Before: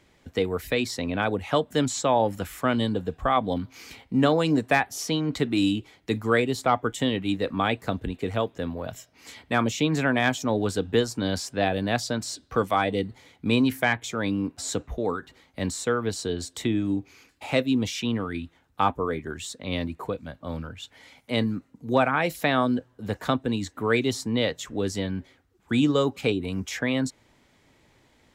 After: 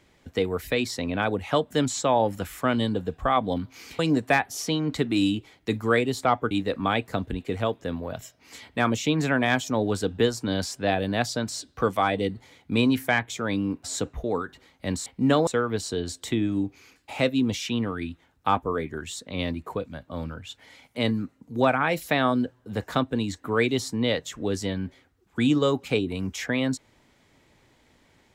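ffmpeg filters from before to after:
ffmpeg -i in.wav -filter_complex "[0:a]asplit=5[link_01][link_02][link_03][link_04][link_05];[link_01]atrim=end=3.992[link_06];[link_02]atrim=start=4.398:end=6.922[link_07];[link_03]atrim=start=7.248:end=15.802[link_08];[link_04]atrim=start=3.988:end=4.402[link_09];[link_05]atrim=start=15.798[link_10];[link_06][link_07]acrossfade=duration=0.004:curve1=hsin:curve2=hsin[link_11];[link_11][link_08]acrossfade=duration=0.004:curve1=hsin:curve2=hsin[link_12];[link_12][link_09]acrossfade=duration=0.004:curve1=hsin:curve2=hsin[link_13];[link_13][link_10]acrossfade=duration=0.004:curve1=hsin:curve2=hsin" out.wav

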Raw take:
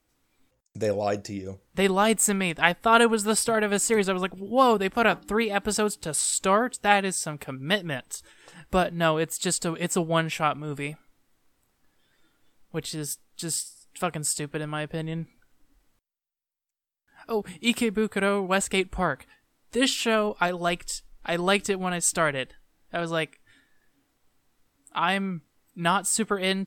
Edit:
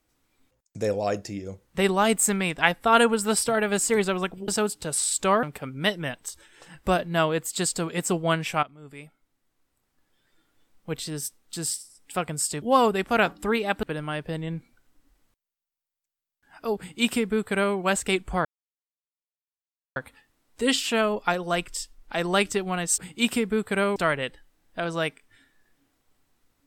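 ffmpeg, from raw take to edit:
ffmpeg -i in.wav -filter_complex "[0:a]asplit=9[link_01][link_02][link_03][link_04][link_05][link_06][link_07][link_08][link_09];[link_01]atrim=end=4.482[link_10];[link_02]atrim=start=5.688:end=6.642[link_11];[link_03]atrim=start=7.288:end=10.49,asetpts=PTS-STARTPTS,afade=type=out:start_time=3.198:duration=0.004:curve=hsin:silence=0.149624[link_12];[link_04]atrim=start=10.49:end=14.482,asetpts=PTS-STARTPTS,afade=type=in:duration=2.27:silence=0.149624[link_13];[link_05]atrim=start=4.478:end=5.692[link_14];[link_06]atrim=start=14.478:end=19.1,asetpts=PTS-STARTPTS,afade=type=out:start_time=4.618:duration=0.004:curve=hsin,apad=pad_dur=1.51[link_15];[link_07]atrim=start=19.1:end=22.122,asetpts=PTS-STARTPTS,afade=type=in:duration=0.004:curve=hsin[link_16];[link_08]atrim=start=17.428:end=18.412[link_17];[link_09]atrim=start=22.118[link_18];[link_10][link_11]acrossfade=duration=0.004:curve1=hsin:curve2=hsin[link_19];[link_12][link_13]concat=n=2:v=0:a=1[link_20];[link_19][link_20]acrossfade=duration=0.004:curve1=hsin:curve2=hsin[link_21];[link_21][link_14]acrossfade=duration=0.004:curve1=hsin:curve2=hsin[link_22];[link_15][link_16]concat=n=2:v=0:a=1[link_23];[link_22][link_23]acrossfade=duration=0.004:curve1=hsin:curve2=hsin[link_24];[link_24][link_17]acrossfade=duration=0.004:curve1=hsin:curve2=hsin[link_25];[link_25][link_18]acrossfade=duration=0.004:curve1=hsin:curve2=hsin" out.wav

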